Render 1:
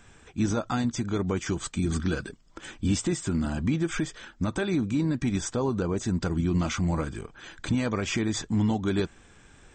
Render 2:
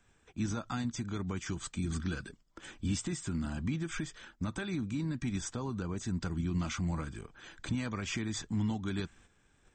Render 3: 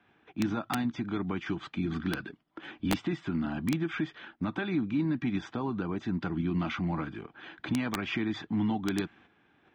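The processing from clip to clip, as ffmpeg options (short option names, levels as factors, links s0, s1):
-filter_complex "[0:a]agate=range=0.398:threshold=0.00316:ratio=16:detection=peak,acrossover=split=300|820[s0][s1][s2];[s1]acompressor=threshold=0.00631:ratio=6[s3];[s0][s3][s2]amix=inputs=3:normalize=0,volume=0.473"
-af "highpass=160,equalizer=f=310:t=q:w=4:g=5,equalizer=f=510:t=q:w=4:g=-4,equalizer=f=760:t=q:w=4:g=5,lowpass=f=3400:w=0.5412,lowpass=f=3400:w=1.3066,aeval=exprs='(mod(17.8*val(0)+1,2)-1)/17.8':c=same,volume=1.78"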